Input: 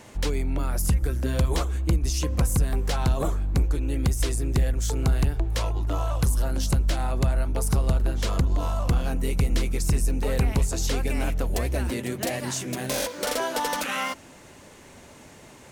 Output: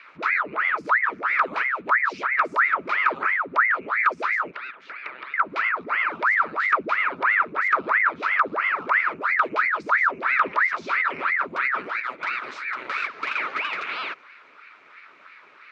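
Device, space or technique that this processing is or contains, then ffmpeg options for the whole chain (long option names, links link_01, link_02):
voice changer toy: -filter_complex "[0:a]asettb=1/sr,asplit=3[link_01][link_02][link_03];[link_01]atrim=end=4.514[link_04];[link_02]atrim=start=4.51:end=5.34,asetpts=PTS-STARTPTS,afade=type=in:duration=0.004:curve=qsin,afade=type=out:start_time=0.826:duration=0.004:curve=qsin,acrossover=split=400 4100:gain=0.0708 1 0.0708[link_05][link_06][link_07];[link_05][link_06][link_07]amix=inputs=3:normalize=0[link_08];[link_03]atrim=start=5.336[link_09];[link_04][link_08]acrossfade=duration=0.004:curve1=hsin:curve2=qsin[link_10];[link_10][link_09]acrossfade=duration=0.004:curve1=qsin:curve2=hsin,aeval=exprs='val(0)*sin(2*PI*1100*n/s+1100*0.9/3*sin(2*PI*3*n/s))':channel_layout=same,highpass=450,equalizer=frequency=510:width_type=q:width=4:gain=-4,equalizer=frequency=760:width_type=q:width=4:gain=-9,equalizer=frequency=1300:width_type=q:width=4:gain=9,equalizer=frequency=2300:width_type=q:width=4:gain=9,equalizer=frequency=3200:width_type=q:width=4:gain=-5,lowpass=frequency=3700:width=0.5412,lowpass=frequency=3700:width=1.3066"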